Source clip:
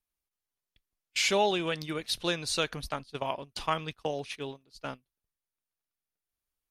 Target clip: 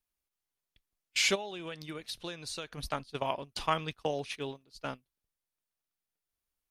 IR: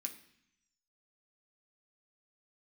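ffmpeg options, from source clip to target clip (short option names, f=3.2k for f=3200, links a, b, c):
-filter_complex "[0:a]asplit=3[a][b][c];[a]afade=t=out:st=1.34:d=0.02[d];[b]acompressor=threshold=-38dB:ratio=6,afade=t=in:st=1.34:d=0.02,afade=t=out:st=2.77:d=0.02[e];[c]afade=t=in:st=2.77:d=0.02[f];[d][e][f]amix=inputs=3:normalize=0"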